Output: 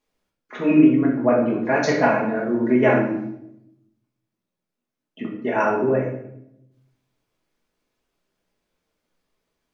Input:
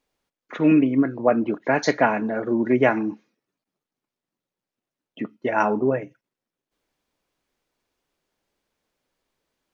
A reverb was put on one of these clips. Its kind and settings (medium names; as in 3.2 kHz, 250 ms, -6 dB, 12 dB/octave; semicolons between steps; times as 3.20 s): simulated room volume 210 m³, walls mixed, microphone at 1.4 m; trim -4 dB